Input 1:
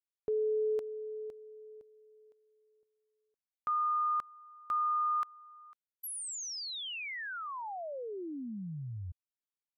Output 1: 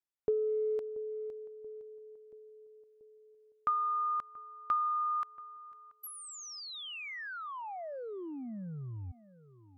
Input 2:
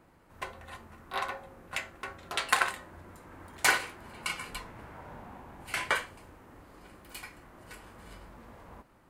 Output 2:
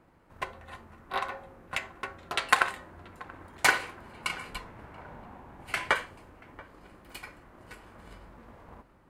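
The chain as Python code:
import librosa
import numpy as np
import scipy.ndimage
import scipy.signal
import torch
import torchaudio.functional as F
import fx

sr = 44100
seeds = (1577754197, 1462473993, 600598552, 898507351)

y = fx.high_shelf(x, sr, hz=4600.0, db=-7.5)
y = fx.transient(y, sr, attack_db=6, sustain_db=2)
y = fx.echo_filtered(y, sr, ms=682, feedback_pct=61, hz=1100.0, wet_db=-18.5)
y = F.gain(torch.from_numpy(y), -1.0).numpy()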